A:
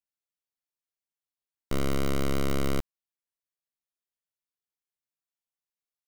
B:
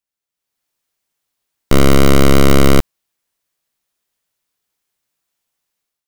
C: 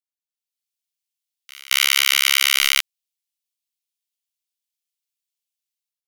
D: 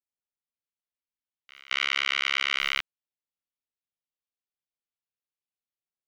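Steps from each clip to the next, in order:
level rider gain up to 12 dB; trim +6 dB
inverse Chebyshev high-pass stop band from 560 Hz, stop band 70 dB; waveshaping leveller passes 5; reverse echo 221 ms -23 dB
tape spacing loss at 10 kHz 35 dB

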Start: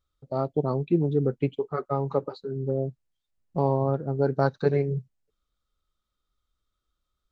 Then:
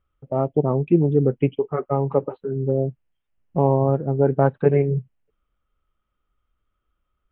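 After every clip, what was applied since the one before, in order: steep low-pass 3.1 kHz 72 dB/octave; dynamic bell 1.4 kHz, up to -6 dB, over -47 dBFS, Q 1.9; trim +6 dB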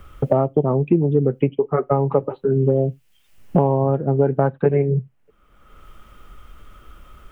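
on a send at -22 dB: reverberation, pre-delay 5 ms; on the sum: three bands compressed up and down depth 100%; trim +1 dB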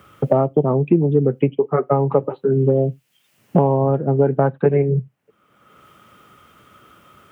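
high-pass 110 Hz 24 dB/octave; trim +1.5 dB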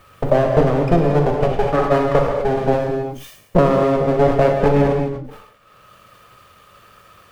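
comb filter that takes the minimum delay 1.7 ms; gated-style reverb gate 280 ms flat, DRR 1 dB; decay stretcher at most 73 dB/s; trim +1 dB

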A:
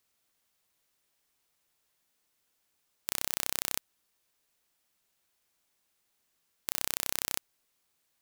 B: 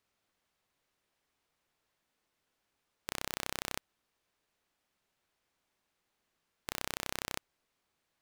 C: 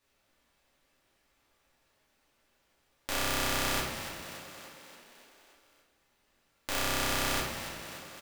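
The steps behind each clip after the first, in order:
low-pass 2.3 kHz 6 dB/octave; trim +2 dB
frequency-shifting echo 288 ms, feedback 61%, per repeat +42 Hz, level -10 dB; simulated room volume 150 m³, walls mixed, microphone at 2.5 m

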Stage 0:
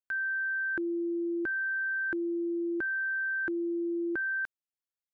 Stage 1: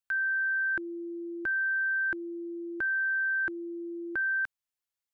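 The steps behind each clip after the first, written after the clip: peaking EQ 310 Hz -10 dB 1.6 oct; trim +3.5 dB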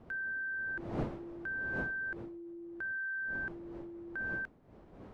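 wind noise 440 Hz -38 dBFS; trim -9 dB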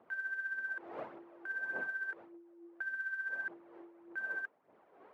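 band-pass 570–2300 Hz; phaser 1.7 Hz, delay 2.9 ms, feedback 46%; trim -1.5 dB

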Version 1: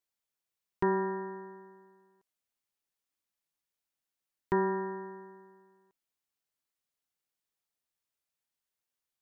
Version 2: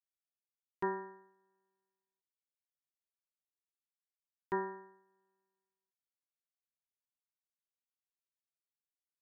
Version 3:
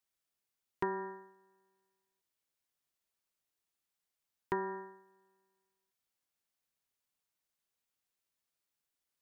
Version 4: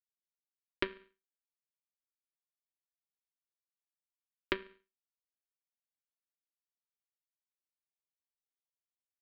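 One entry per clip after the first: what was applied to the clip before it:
bass shelf 250 Hz -11 dB; upward expansion 2.5:1, over -45 dBFS; trim -2.5 dB
compression 6:1, threshold -39 dBFS, peak gain reduction 9 dB; trim +7.5 dB
power-law waveshaper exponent 3; static phaser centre 330 Hz, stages 4; trim +13.5 dB

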